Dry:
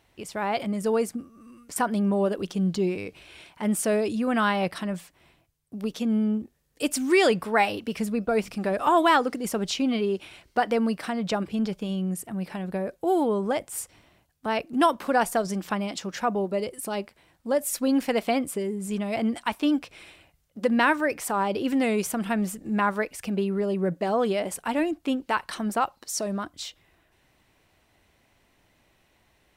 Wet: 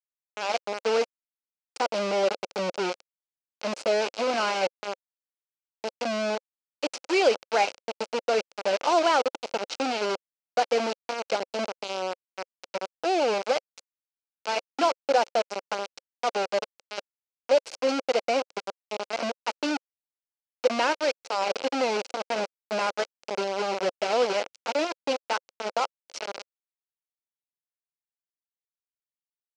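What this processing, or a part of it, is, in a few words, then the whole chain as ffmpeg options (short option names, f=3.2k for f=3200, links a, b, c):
hand-held game console: -filter_complex "[0:a]asettb=1/sr,asplit=3[a][b][c];[a]atrim=end=14.604[d];[b]atrim=start=14.6:end=15.51,asetpts=PTS-STARTPTS,afade=t=in:d=0.004:c=qsin,afade=t=out:st=0.906:d=0.004:c=qsin,bandreject=f=50:t=h:w=6,bandreject=f=100:t=h:w=6,bandreject=f=150:t=h:w=6,bandreject=f=200:t=h:w=6,bandreject=f=250:t=h:w=6,bandreject=f=300:t=h:w=6,bandreject=f=350:t=h:w=6,bandreject=f=400:t=h:w=6[e];[c]atrim=start=15.506[f];[d][e]acrossfade=d=0.004:c1=hsin:c2=qsin[g];[g][f]acrossfade=d=0.004:c1=qsin:c2=hsin,acrusher=bits=3:mix=0:aa=0.000001,highpass=460,equalizer=f=530:t=q:w=4:g=6,equalizer=f=1.1k:t=q:w=4:g=-6,equalizer=f=1.8k:t=q:w=4:g=-10,equalizer=f=3.5k:t=q:w=4:g=-7,lowpass=f=5.5k:w=0.5412,lowpass=f=5.5k:w=1.3066"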